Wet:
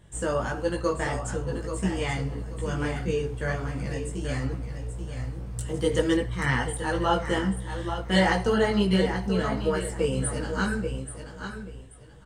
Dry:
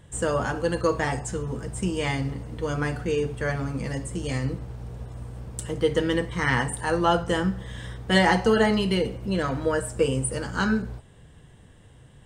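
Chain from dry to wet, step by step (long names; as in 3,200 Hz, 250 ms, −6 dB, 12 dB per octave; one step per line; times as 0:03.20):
repeating echo 833 ms, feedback 23%, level −8.5 dB
multi-voice chorus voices 6, 1.4 Hz, delay 18 ms, depth 3 ms
0:05.74–0:06.17: parametric band 8,600 Hz +10 dB 1.8 octaves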